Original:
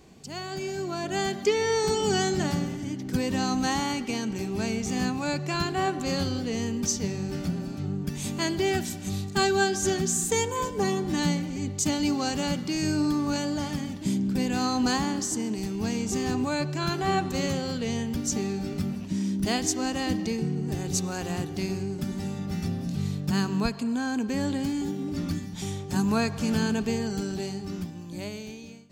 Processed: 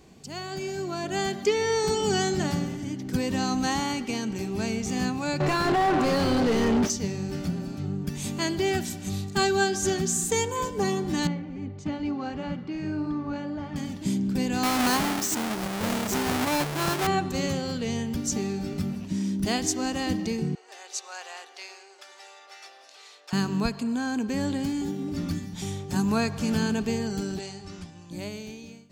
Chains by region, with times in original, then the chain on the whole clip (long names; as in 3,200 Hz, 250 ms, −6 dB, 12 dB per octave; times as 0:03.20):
0:05.40–0:06.90: low-pass filter 11,000 Hz + mid-hump overdrive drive 34 dB, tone 1,000 Hz, clips at −14 dBFS
0:11.27–0:13.76: low-pass filter 2,100 Hz + flanger 1.6 Hz, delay 0.5 ms, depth 4.2 ms, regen −62%
0:14.63–0:17.07: each half-wave held at its own peak + low-shelf EQ 280 Hz −8.5 dB
0:20.55–0:23.33: Bessel high-pass filter 900 Hz, order 8 + high-frequency loss of the air 61 metres
0:27.39–0:28.11: low-pass filter 9,200 Hz 24 dB per octave + parametric band 240 Hz −10.5 dB 1.7 octaves
whole clip: no processing